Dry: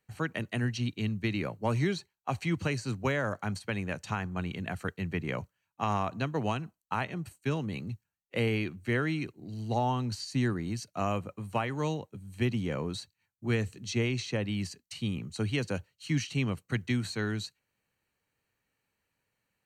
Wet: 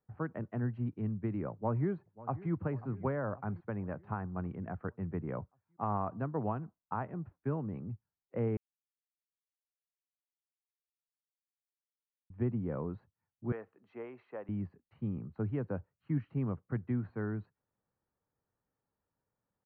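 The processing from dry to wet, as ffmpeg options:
-filter_complex "[0:a]asplit=2[s0][s1];[s1]afade=t=in:st=1.52:d=0.01,afade=t=out:st=2.52:d=0.01,aecho=0:1:540|1080|1620|2160|2700|3240:0.133352|0.0800113|0.0480068|0.0288041|0.0172824|0.0103695[s2];[s0][s2]amix=inputs=2:normalize=0,asettb=1/sr,asplit=3[s3][s4][s5];[s3]atrim=end=13.524[s6];[s4]atrim=start=13.52:end=14.49,asetpts=PTS-STARTPTS,afade=t=in:d=0.004:c=qsin,afade=t=out:st=0.966:d=0.004:c=qsin,highpass=590[s7];[s5]atrim=start=14.486[s8];[s6][s7]acrossfade=d=0.004:c1=hsin:c2=qsin[s9];[s9][s8]acrossfade=d=0.004:c1=qsin:c2=hsin,asplit=3[s10][s11][s12];[s10]atrim=end=8.57,asetpts=PTS-STARTPTS,afade=t=out:st=8.566:d=0.004:c=hsin[s13];[s11]atrim=start=8.57:end=12.3,asetpts=PTS-STARTPTS,volume=0[s14];[s12]atrim=start=12.3,asetpts=PTS-STARTPTS,afade=t=in:d=0.004:c=hsin[s15];[s13][s14][s15]concat=n=3:v=0:a=1,lowpass=f=1300:w=0.5412,lowpass=f=1300:w=1.3066,volume=0.668"

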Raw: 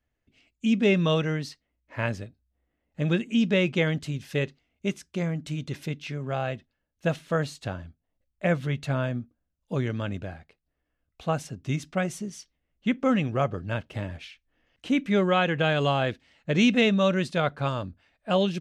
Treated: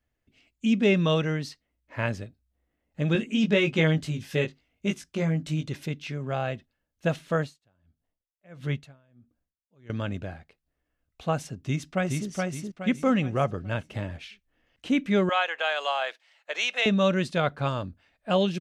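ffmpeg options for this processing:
-filter_complex "[0:a]asettb=1/sr,asplit=3[s0][s1][s2];[s0]atrim=end=3.134[s3];[s1]atrim=start=3.13:end=5.69,asetpts=PTS-STARTPTS,afade=t=in:d=0.004:c=qsin,afade=t=out:st=2.556:d=0.004:c=qsin,asplit=2[s4][s5];[s5]adelay=19,volume=0.631[s6];[s4][s6]amix=inputs=2:normalize=0,atrim=end_sample=112896[s7];[s2]atrim=start=5.686[s8];[s3][s7]acrossfade=d=0.004:c1=hsin:c2=qsin[s9];[s9][s8]acrossfade=d=0.004:c1=qsin:c2=hsin,asettb=1/sr,asplit=3[s10][s11][s12];[s10]atrim=end=7.384[s13];[s11]atrim=start=7.38:end=9.9,asetpts=PTS-STARTPTS,afade=t=in:d=0.004:c=qsin,afade=t=out:st=2.516:d=0.004:c=qsin,aeval=exprs='val(0)*pow(10,-37*(0.5-0.5*cos(2*PI*1.5*n/s))/20)':c=same[s14];[s12]atrim=start=9.896[s15];[s13][s14]acrossfade=d=0.004:c1=hsin:c2=qsin[s16];[s16][s15]acrossfade=d=0.004:c1=qsin:c2=hsin,asplit=2[s17][s18];[s18]afade=t=in:st=11.57:d=0.01,afade=t=out:st=12.29:d=0.01,aecho=0:1:420|840|1260|1680|2100:0.749894|0.299958|0.119983|0.0479932|0.0191973[s19];[s17][s19]amix=inputs=2:normalize=0,asettb=1/sr,asplit=3[s20][s21][s22];[s20]atrim=end=15.294[s23];[s21]atrim=start=15.29:end=16.86,asetpts=PTS-STARTPTS,afade=t=in:d=0.004:c=qsin,afade=t=out:st=1.566:d=0.004:c=qsin,highpass=f=640:w=0.5412,highpass=f=640:w=1.3066[s24];[s22]atrim=start=16.856[s25];[s23][s24]acrossfade=d=0.004:c1=hsin:c2=qsin[s26];[s26][s25]acrossfade=d=0.004:c1=qsin:c2=hsin"

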